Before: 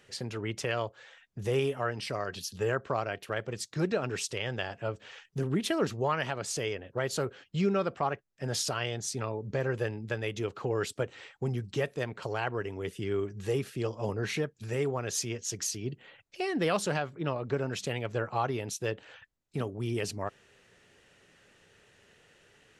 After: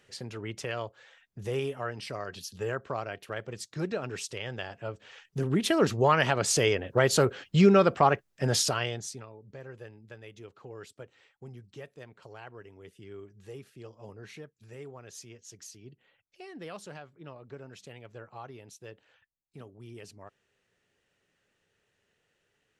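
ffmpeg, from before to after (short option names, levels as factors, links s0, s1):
-af "volume=2.66,afade=t=in:st=5.08:d=1.37:silence=0.266073,afade=t=out:st=8.29:d=0.7:silence=0.316228,afade=t=out:st=8.99:d=0.27:silence=0.237137"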